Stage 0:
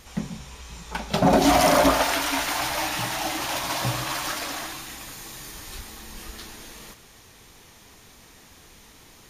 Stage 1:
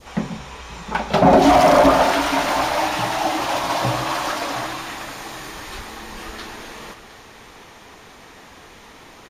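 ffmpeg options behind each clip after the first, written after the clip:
ffmpeg -i in.wav -filter_complex "[0:a]adynamicequalizer=threshold=0.0141:dfrequency=1800:dqfactor=0.78:tfrequency=1800:tqfactor=0.78:attack=5:release=100:ratio=0.375:range=2.5:mode=cutabove:tftype=bell,asplit=2[link_01][link_02];[link_02]highpass=frequency=720:poles=1,volume=13dB,asoftclip=type=tanh:threshold=-10.5dB[link_03];[link_01][link_03]amix=inputs=2:normalize=0,lowpass=frequency=1100:poles=1,volume=-6dB,aecho=1:1:712:0.188,volume=7dB" out.wav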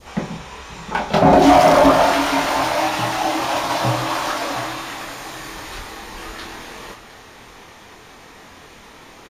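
ffmpeg -i in.wav -filter_complex "[0:a]asplit=2[link_01][link_02];[link_02]adelay=25,volume=-5.5dB[link_03];[link_01][link_03]amix=inputs=2:normalize=0" out.wav

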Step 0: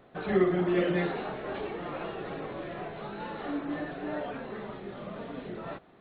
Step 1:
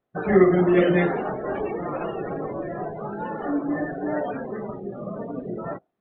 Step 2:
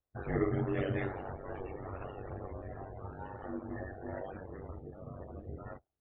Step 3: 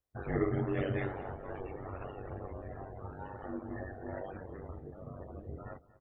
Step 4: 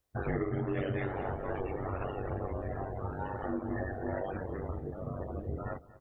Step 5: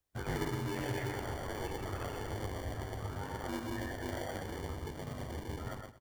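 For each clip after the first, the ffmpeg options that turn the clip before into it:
ffmpeg -i in.wav -af "afftdn=noise_reduction=32:noise_floor=-39,volume=8.5dB" out.wav
ffmpeg -i in.wav -af "flanger=delay=3.7:depth=5.5:regen=-50:speed=1.4:shape=sinusoidal,aeval=exprs='val(0)*sin(2*PI*48*n/s)':channel_layout=same,lowshelf=frequency=120:width_type=q:width=1.5:gain=13.5,volume=-7.5dB" out.wav
ffmpeg -i in.wav -af "aecho=1:1:233|466|699:0.112|0.0494|0.0217" out.wav
ffmpeg -i in.wav -af "acompressor=threshold=-37dB:ratio=6,volume=7.5dB" out.wav
ffmpeg -i in.wav -filter_complex "[0:a]aecho=1:1:122:0.631,acrossover=split=150|700[link_01][link_02][link_03];[link_02]acrusher=samples=34:mix=1:aa=0.000001[link_04];[link_01][link_04][link_03]amix=inputs=3:normalize=0,volume=-4dB" out.wav

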